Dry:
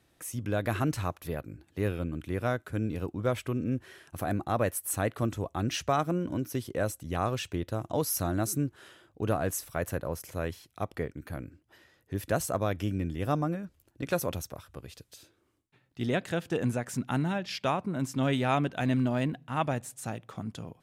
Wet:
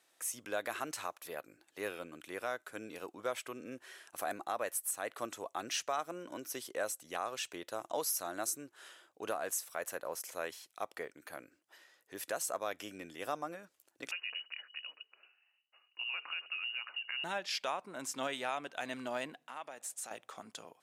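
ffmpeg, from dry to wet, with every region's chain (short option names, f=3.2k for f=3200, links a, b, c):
-filter_complex "[0:a]asettb=1/sr,asplit=3[a][b][c];[a]atrim=end=14.114[d];[b]atrim=start=14.11:end=17.24,asetpts=PTS-STARTPTS,afade=t=in:d=0.004:c=qsin,afade=t=out:st=3.126:d=0.004:c=qsin,acompressor=threshold=-35dB:ratio=6:attack=3.2:release=140:knee=1:detection=peak,lowpass=f=2.6k:t=q:w=0.5098,lowpass=f=2.6k:t=q:w=0.6013,lowpass=f=2.6k:t=q:w=0.9,lowpass=f=2.6k:t=q:w=2.563,afreqshift=-3000,bandreject=f=50:t=h:w=6,bandreject=f=100:t=h:w=6,bandreject=f=150:t=h:w=6,bandreject=f=200:t=h:w=6,bandreject=f=250:t=h:w=6,bandreject=f=300:t=h:w=6,bandreject=f=350:t=h:w=6,bandreject=f=400:t=h:w=6,bandreject=f=450:t=h:w=6[e];[c]atrim=start=17.236[f];[d][e]acrossfade=d=0.004:c1=hsin:c2=qsin[g];[g][f]acrossfade=d=0.004:c1=qsin:c2=hsin,asettb=1/sr,asplit=3[h][i][j];[h]atrim=end=19.344[k];[i]atrim=start=19.34:end=20.11,asetpts=PTS-STARTPTS,afade=t=in:d=0.004:c=qsin,afade=t=out:st=0.766:d=0.004:c=qsin,highpass=180,acompressor=threshold=-40dB:ratio=3:attack=3.2:release=140:knee=1:detection=peak[l];[j]atrim=start=20.106[m];[k][l]acrossfade=d=0.004:c1=hsin:c2=qsin[n];[n][m]acrossfade=d=0.004:c1=qsin:c2=hsin,highpass=590,equalizer=f=7.6k:w=0.98:g=5,alimiter=limit=-22.5dB:level=0:latency=1:release=343,volume=-1.5dB"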